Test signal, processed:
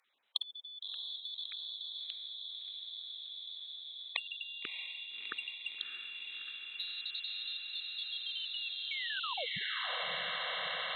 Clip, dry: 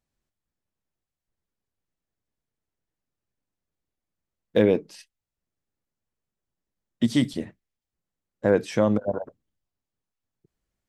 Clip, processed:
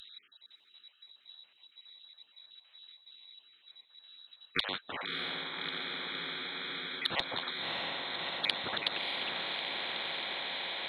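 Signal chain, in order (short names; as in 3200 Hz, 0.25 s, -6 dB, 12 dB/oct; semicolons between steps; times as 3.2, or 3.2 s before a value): random spectral dropouts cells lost 48%; inverted band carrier 3900 Hz; HPF 190 Hz 12 dB/oct; tilt +2.5 dB/oct; treble ducked by the level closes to 690 Hz, closed at -18 dBFS; diffused feedback echo 0.629 s, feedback 77%, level -12.5 dB; spectral compressor 4:1; gain -3 dB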